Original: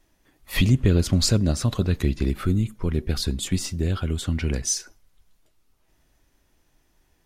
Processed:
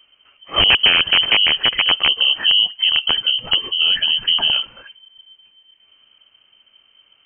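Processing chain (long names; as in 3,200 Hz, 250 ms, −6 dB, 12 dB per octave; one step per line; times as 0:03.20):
in parallel at −2 dB: brickwall limiter −18 dBFS, peak gain reduction 10 dB
on the sum: wrap-around overflow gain 9 dB
voice inversion scrambler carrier 3,100 Hz
level +2.5 dB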